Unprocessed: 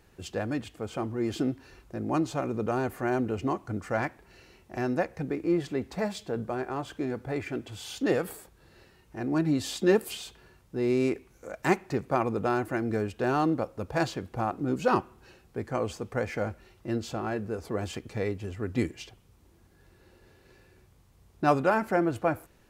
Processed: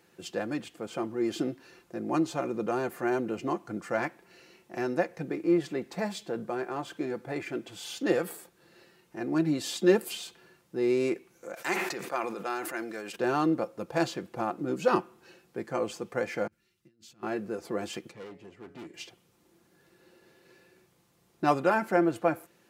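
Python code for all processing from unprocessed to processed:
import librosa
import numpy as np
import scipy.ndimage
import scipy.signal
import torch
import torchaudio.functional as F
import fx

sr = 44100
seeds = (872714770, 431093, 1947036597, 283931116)

y = fx.chain(x, sr, fx.highpass(hz=1100.0, slope=6),
    fx.sustainer(db_per_s=43.0), at=(11.54, 13.16))
y = fx.chain(y, sr, fx.tone_stack(knobs='6-0-2'),
    fx.over_compress(threshold_db=-55.0, ratio=-0.5), at=(16.47, 17.23))
y = fx.chain(y, sr, fx.high_shelf(hz=4900.0, db=-10.0),
    fx.comb_fb(f0_hz=140.0, decay_s=1.1, harmonics='all', damping=0.0, mix_pct=60),
    fx.clip_hard(threshold_db=-39.0), at=(18.11, 18.94))
y = scipy.signal.sosfilt(scipy.signal.butter(2, 200.0, 'highpass', fs=sr, output='sos'), y)
y = fx.peak_eq(y, sr, hz=850.0, db=-2.0, octaves=1.4)
y = y + 0.38 * np.pad(y, (int(5.8 * sr / 1000.0), 0))[:len(y)]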